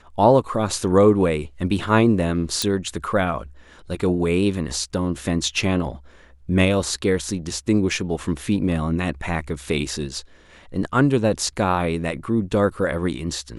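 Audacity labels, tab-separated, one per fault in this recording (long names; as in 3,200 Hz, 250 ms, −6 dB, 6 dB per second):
2.620000	2.620000	click −6 dBFS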